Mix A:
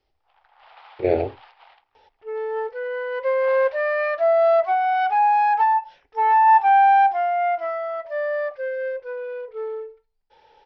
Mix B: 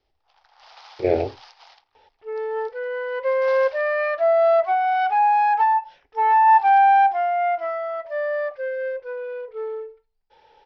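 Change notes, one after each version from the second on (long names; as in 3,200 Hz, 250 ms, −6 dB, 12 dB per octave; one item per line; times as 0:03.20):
first sound: remove low-pass filter 3,000 Hz 24 dB per octave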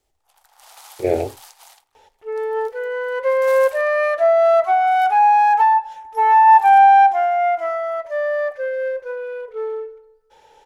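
second sound: send on
master: remove elliptic low-pass filter 5,200 Hz, stop band 40 dB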